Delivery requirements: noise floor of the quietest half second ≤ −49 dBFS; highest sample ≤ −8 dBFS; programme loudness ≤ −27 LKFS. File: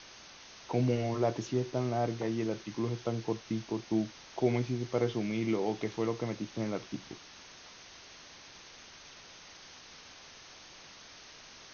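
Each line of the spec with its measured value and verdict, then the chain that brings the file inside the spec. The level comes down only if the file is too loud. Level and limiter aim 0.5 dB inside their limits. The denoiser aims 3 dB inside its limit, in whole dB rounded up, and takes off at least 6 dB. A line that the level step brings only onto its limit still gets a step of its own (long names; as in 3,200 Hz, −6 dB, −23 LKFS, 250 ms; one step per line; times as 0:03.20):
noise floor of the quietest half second −52 dBFS: in spec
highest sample −15.5 dBFS: in spec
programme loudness −33.5 LKFS: in spec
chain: no processing needed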